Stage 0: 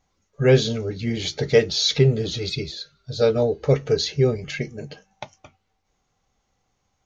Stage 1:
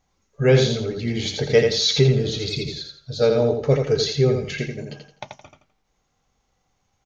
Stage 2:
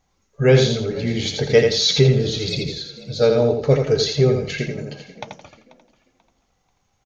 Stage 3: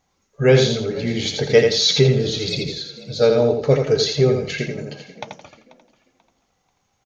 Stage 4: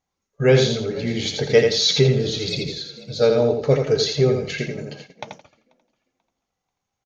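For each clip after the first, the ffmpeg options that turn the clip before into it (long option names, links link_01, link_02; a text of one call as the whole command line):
ffmpeg -i in.wav -af "aecho=1:1:84|168|252|336:0.562|0.169|0.0506|0.0152" out.wav
ffmpeg -i in.wav -filter_complex "[0:a]asplit=4[link_01][link_02][link_03][link_04];[link_02]adelay=487,afreqshift=40,volume=-19.5dB[link_05];[link_03]adelay=974,afreqshift=80,volume=-29.7dB[link_06];[link_04]adelay=1461,afreqshift=120,volume=-39.8dB[link_07];[link_01][link_05][link_06][link_07]amix=inputs=4:normalize=0,volume=2dB" out.wav
ffmpeg -i in.wav -af "lowshelf=frequency=71:gain=-11,volume=1dB" out.wav
ffmpeg -i in.wav -af "agate=range=-11dB:threshold=-39dB:ratio=16:detection=peak,volume=-1.5dB" out.wav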